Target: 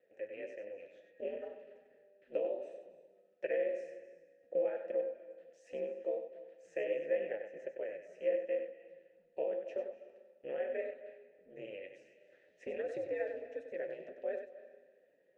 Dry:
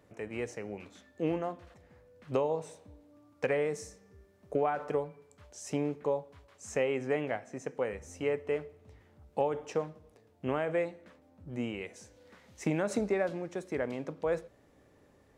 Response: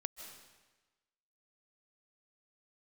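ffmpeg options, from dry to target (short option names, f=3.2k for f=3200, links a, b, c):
-filter_complex "[0:a]aeval=exprs='val(0)*sin(2*PI*100*n/s)':c=same,flanger=delay=3.9:depth=8:regen=50:speed=1.4:shape=sinusoidal,asplit=3[a][b][c];[a]bandpass=f=530:t=q:w=8,volume=0dB[d];[b]bandpass=f=1.84k:t=q:w=8,volume=-6dB[e];[c]bandpass=f=2.48k:t=q:w=8,volume=-9dB[f];[d][e][f]amix=inputs=3:normalize=0,asplit=2[g][h];[1:a]atrim=start_sample=2205,adelay=96[i];[h][i]afir=irnorm=-1:irlink=0,volume=-5dB[j];[g][j]amix=inputs=2:normalize=0,volume=8dB"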